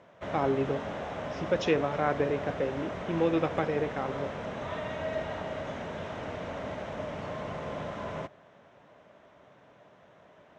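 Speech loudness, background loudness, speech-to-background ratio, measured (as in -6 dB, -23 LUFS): -30.5 LUFS, -37.0 LUFS, 6.5 dB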